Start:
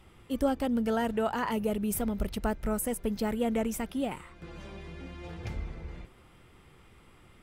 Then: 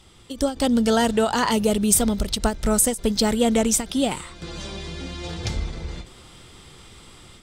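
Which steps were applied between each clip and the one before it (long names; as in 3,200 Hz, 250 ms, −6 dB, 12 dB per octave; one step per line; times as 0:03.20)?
flat-topped bell 5,500 Hz +12.5 dB
automatic gain control gain up to 6.5 dB
every ending faded ahead of time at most 180 dB per second
level +3 dB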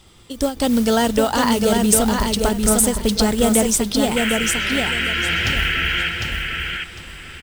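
noise that follows the level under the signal 19 dB
sound drawn into the spectrogram noise, 0:04.16–0:06.09, 1,300–3,300 Hz −25 dBFS
repeating echo 753 ms, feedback 23%, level −4 dB
level +2 dB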